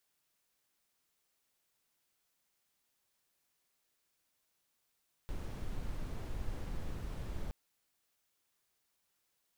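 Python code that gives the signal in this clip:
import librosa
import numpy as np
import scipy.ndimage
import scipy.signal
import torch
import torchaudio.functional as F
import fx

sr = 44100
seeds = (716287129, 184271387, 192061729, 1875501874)

y = fx.noise_colour(sr, seeds[0], length_s=2.22, colour='brown', level_db=-38.5)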